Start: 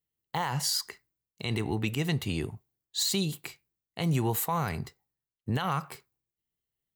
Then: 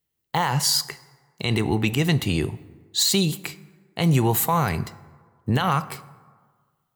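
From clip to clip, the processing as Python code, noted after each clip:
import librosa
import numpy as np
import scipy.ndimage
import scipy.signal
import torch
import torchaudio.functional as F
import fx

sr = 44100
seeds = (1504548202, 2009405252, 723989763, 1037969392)

y = fx.rev_plate(x, sr, seeds[0], rt60_s=1.6, hf_ratio=0.5, predelay_ms=0, drr_db=16.0)
y = F.gain(torch.from_numpy(y), 8.0).numpy()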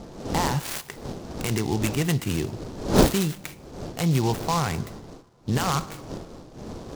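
y = fx.dead_time(x, sr, dead_ms=0.065)
y = fx.dmg_wind(y, sr, seeds[1], corner_hz=430.0, level_db=-28.0)
y = fx.noise_mod_delay(y, sr, seeds[2], noise_hz=4400.0, depth_ms=0.057)
y = F.gain(torch.from_numpy(y), -3.0).numpy()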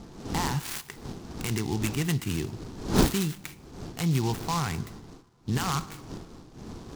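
y = fx.peak_eq(x, sr, hz=570.0, db=-9.5, octaves=0.64)
y = F.gain(torch.from_numpy(y), -3.0).numpy()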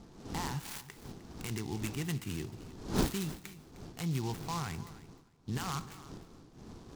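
y = fx.echo_feedback(x, sr, ms=307, feedback_pct=16, wet_db=-17)
y = F.gain(torch.from_numpy(y), -8.5).numpy()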